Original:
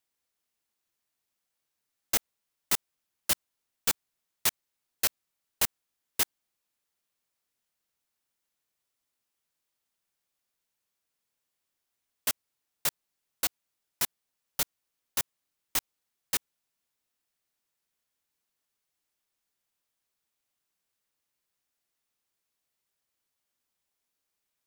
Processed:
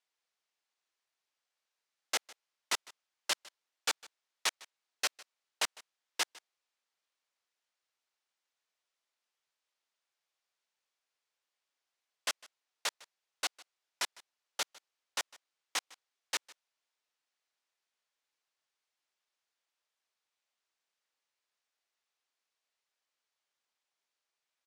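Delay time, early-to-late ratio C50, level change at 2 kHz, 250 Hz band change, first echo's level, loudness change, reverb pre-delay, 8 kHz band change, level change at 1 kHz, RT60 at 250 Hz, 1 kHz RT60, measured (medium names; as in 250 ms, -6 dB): 154 ms, no reverb, 0.0 dB, -11.0 dB, -22.0 dB, -6.0 dB, no reverb, -6.0 dB, -0.5 dB, no reverb, no reverb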